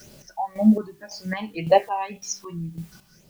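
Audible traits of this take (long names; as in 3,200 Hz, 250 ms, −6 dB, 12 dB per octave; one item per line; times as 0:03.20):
phaser sweep stages 6, 1.9 Hz, lowest notch 470–1,700 Hz
a quantiser's noise floor 10 bits, dither triangular
chopped level 1.8 Hz, depth 65%, duty 40%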